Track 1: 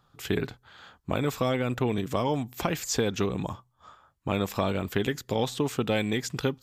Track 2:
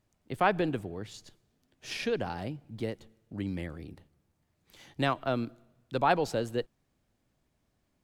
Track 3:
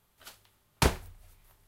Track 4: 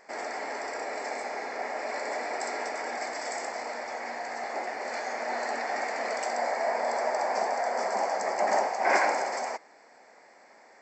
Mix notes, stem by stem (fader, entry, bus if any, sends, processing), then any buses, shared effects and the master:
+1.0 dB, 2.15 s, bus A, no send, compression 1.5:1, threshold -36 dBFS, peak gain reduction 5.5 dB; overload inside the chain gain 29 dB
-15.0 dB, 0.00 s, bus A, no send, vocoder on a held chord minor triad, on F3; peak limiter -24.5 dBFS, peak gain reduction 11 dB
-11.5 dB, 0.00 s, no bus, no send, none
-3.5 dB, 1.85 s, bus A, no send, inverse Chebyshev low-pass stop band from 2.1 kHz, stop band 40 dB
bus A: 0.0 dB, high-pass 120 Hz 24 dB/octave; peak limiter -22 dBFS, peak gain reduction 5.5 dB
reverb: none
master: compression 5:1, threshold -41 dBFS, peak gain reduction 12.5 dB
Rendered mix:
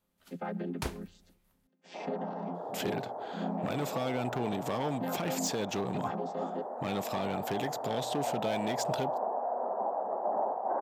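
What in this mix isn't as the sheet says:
stem 1: entry 2.15 s -> 2.55 s; stem 2 -15.0 dB -> -3.5 dB; master: missing compression 5:1, threshold -41 dBFS, peak gain reduction 12.5 dB

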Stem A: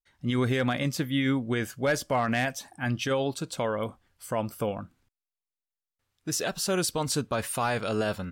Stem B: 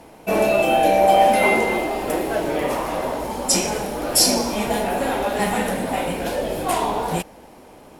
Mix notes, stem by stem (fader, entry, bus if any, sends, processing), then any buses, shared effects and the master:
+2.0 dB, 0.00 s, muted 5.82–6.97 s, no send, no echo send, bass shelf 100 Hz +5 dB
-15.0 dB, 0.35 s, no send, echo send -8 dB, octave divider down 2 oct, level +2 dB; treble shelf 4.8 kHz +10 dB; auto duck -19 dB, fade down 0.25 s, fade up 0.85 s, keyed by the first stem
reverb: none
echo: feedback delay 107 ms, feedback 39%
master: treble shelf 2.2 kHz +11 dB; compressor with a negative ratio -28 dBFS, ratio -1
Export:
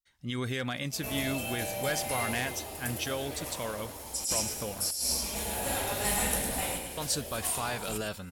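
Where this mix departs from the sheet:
stem A +2.0 dB -> -10.0 dB; stem B: entry 0.35 s -> 0.65 s

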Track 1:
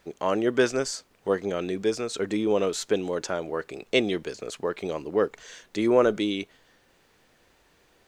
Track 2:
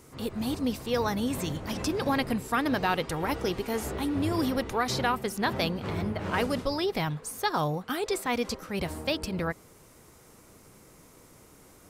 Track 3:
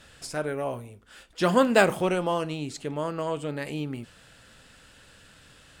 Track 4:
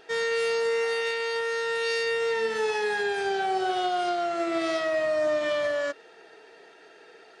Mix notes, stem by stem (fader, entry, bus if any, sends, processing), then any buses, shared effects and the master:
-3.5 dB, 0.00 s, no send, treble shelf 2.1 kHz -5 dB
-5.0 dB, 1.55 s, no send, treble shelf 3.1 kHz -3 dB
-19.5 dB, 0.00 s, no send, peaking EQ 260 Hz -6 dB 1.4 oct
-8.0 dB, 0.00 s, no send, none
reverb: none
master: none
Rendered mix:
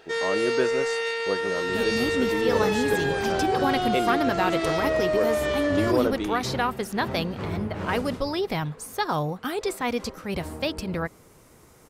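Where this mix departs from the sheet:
stem 2 -5.0 dB -> +2.0 dB; stem 4 -8.0 dB -> +0.5 dB

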